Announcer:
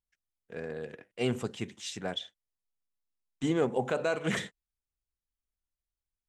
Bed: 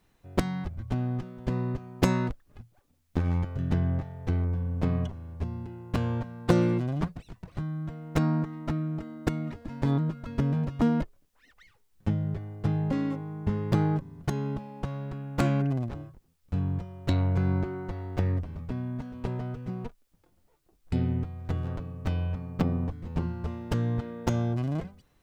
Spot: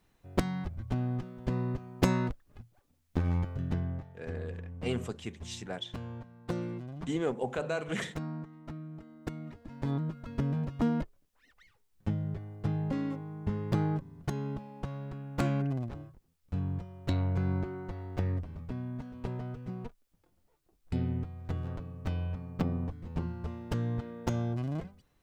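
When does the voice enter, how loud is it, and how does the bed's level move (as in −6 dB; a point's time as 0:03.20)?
3.65 s, −3.5 dB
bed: 0:03.49 −2.5 dB
0:04.23 −12.5 dB
0:08.91 −12.5 dB
0:10.26 −4.5 dB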